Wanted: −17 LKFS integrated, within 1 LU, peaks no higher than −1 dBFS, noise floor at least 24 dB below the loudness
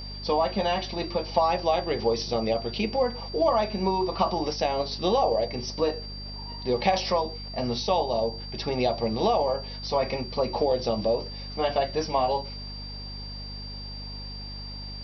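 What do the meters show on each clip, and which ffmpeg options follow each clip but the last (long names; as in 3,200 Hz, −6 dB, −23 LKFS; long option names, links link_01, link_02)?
mains hum 50 Hz; hum harmonics up to 250 Hz; level of the hum −37 dBFS; interfering tone 4,700 Hz; level of the tone −39 dBFS; integrated loudness −27.5 LKFS; sample peak −9.5 dBFS; target loudness −17.0 LKFS
→ -af "bandreject=frequency=50:width_type=h:width=4,bandreject=frequency=100:width_type=h:width=4,bandreject=frequency=150:width_type=h:width=4,bandreject=frequency=200:width_type=h:width=4,bandreject=frequency=250:width_type=h:width=4"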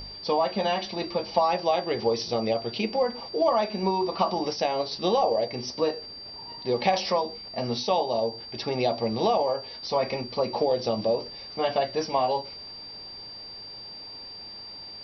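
mains hum none found; interfering tone 4,700 Hz; level of the tone −39 dBFS
→ -af "bandreject=frequency=4700:width=30"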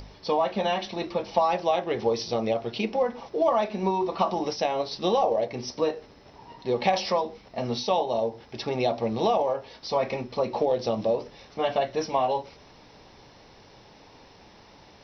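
interfering tone none found; integrated loudness −27.0 LKFS; sample peak −10.0 dBFS; target loudness −17.0 LKFS
→ -af "volume=10dB,alimiter=limit=-1dB:level=0:latency=1"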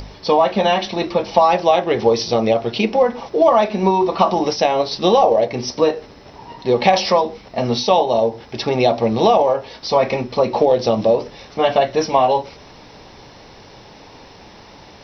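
integrated loudness −17.0 LKFS; sample peak −1.0 dBFS; background noise floor −43 dBFS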